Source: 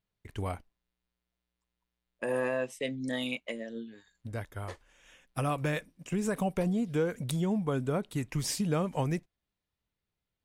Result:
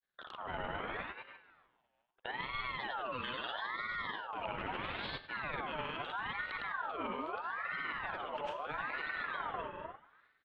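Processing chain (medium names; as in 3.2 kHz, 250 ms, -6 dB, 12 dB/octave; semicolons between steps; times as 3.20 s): recorder AGC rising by 6.2 dB/s; distance through air 190 m; feedback delay 156 ms, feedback 50%, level -8 dB; gate -52 dBFS, range -12 dB; resonant high shelf 3.3 kHz -13 dB, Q 3; hum notches 50/100/150/200/250 Hz; transient shaper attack -10 dB, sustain +6 dB; reverberation RT60 1.1 s, pre-delay 67 ms, DRR 8 dB; reverse; compression 16:1, threshold -45 dBFS, peak gain reduction 20.5 dB; reverse; granulator, pitch spread up and down by 0 st; ring modulator with a swept carrier 1.2 kHz, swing 40%, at 0.77 Hz; trim +12.5 dB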